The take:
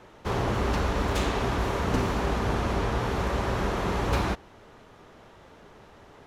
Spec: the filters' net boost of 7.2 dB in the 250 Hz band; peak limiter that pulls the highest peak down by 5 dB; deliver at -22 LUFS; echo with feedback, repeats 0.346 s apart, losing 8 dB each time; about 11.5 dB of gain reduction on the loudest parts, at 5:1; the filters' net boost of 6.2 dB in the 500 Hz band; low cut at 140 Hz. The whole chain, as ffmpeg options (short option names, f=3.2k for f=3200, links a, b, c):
-af "highpass=140,equalizer=f=250:t=o:g=8.5,equalizer=f=500:t=o:g=5,acompressor=threshold=-29dB:ratio=5,alimiter=limit=-24dB:level=0:latency=1,aecho=1:1:346|692|1038|1384|1730:0.398|0.159|0.0637|0.0255|0.0102,volume=11dB"